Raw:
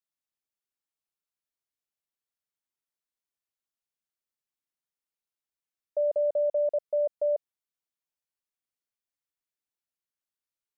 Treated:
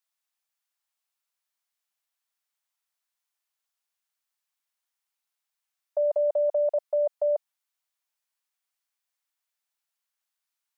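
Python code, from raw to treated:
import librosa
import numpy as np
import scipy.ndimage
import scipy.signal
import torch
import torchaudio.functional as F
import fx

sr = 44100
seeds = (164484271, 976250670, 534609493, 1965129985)

p1 = fx.level_steps(x, sr, step_db=14)
p2 = x + (p1 * librosa.db_to_amplitude(1.0))
p3 = scipy.signal.sosfilt(scipy.signal.butter(4, 680.0, 'highpass', fs=sr, output='sos'), p2)
y = p3 * librosa.db_to_amplitude(3.0)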